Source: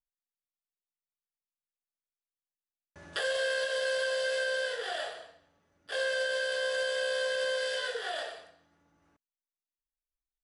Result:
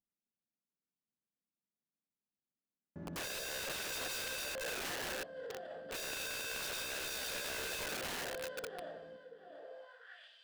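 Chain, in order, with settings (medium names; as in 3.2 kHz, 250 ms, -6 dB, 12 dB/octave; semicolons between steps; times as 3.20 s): 4.55–5.04 s: compressor with a negative ratio -37 dBFS, ratio -0.5; thinning echo 683 ms, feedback 29%, high-pass 170 Hz, level -7 dB; band-pass sweep 210 Hz -> 3.1 kHz, 9.44–10.30 s; integer overflow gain 50.5 dB; trim +14.5 dB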